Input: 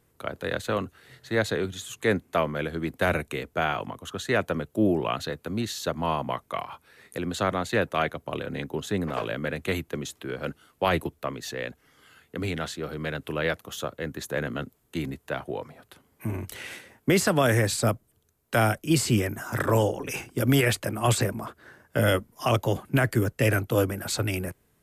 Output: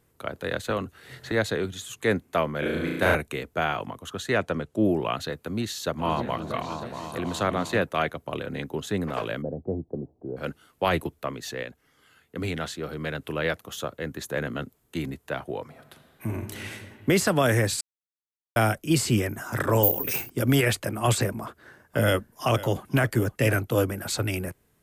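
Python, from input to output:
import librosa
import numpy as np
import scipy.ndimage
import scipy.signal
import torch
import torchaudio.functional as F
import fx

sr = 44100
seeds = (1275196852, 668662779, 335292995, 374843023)

y = fx.band_squash(x, sr, depth_pct=70, at=(0.7, 1.32))
y = fx.room_flutter(y, sr, wall_m=6.0, rt60_s=1.2, at=(2.59, 3.15))
y = fx.lowpass(y, sr, hz=8700.0, slope=12, at=(4.34, 4.84))
y = fx.echo_opening(y, sr, ms=317, hz=400, octaves=2, feedback_pct=70, wet_db=-6, at=(5.98, 7.82), fade=0.02)
y = fx.ellip_lowpass(y, sr, hz=760.0, order=4, stop_db=80, at=(9.41, 10.36), fade=0.02)
y = fx.reverb_throw(y, sr, start_s=15.65, length_s=0.98, rt60_s=2.8, drr_db=6.0)
y = fx.resample_bad(y, sr, factor=3, down='none', up='zero_stuff', at=(19.83, 20.3))
y = fx.echo_single(y, sr, ms=505, db=-15.5, at=(21.43, 23.55))
y = fx.edit(y, sr, fx.clip_gain(start_s=11.63, length_s=0.73, db=-4.0),
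    fx.silence(start_s=17.81, length_s=0.75), tone=tone)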